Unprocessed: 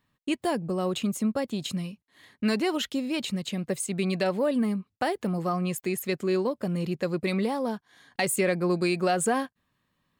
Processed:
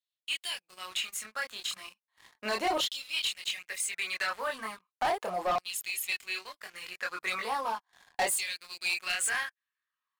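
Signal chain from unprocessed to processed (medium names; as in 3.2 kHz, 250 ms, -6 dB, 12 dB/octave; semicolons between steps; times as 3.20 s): LFO high-pass saw down 0.36 Hz 620–3800 Hz; chorus voices 2, 0.27 Hz, delay 25 ms, depth 3.2 ms; waveshaping leveller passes 3; trim -7 dB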